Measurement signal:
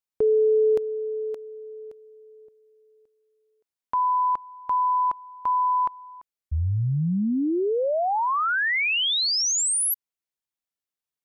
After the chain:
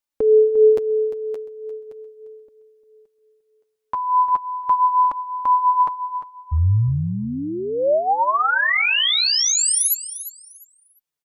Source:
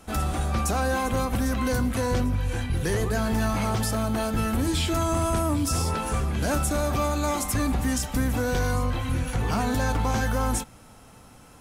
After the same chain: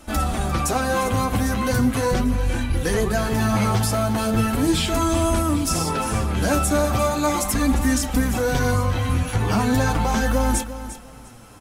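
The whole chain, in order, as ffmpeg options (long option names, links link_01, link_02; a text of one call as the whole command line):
ffmpeg -i in.wav -af "flanger=delay=3.3:depth=7.3:regen=16:speed=0.38:shape=sinusoidal,aecho=1:1:350|700|1050:0.224|0.0515|0.0118,volume=8dB" out.wav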